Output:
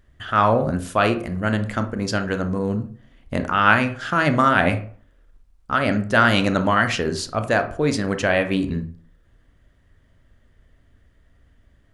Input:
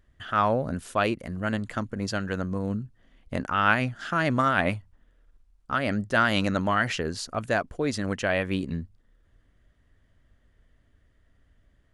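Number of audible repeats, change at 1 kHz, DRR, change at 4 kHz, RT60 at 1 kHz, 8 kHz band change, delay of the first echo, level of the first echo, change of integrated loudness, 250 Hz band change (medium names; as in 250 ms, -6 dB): no echo, +6.5 dB, 7.5 dB, +6.0 dB, 0.45 s, +5.5 dB, no echo, no echo, +6.5 dB, +6.0 dB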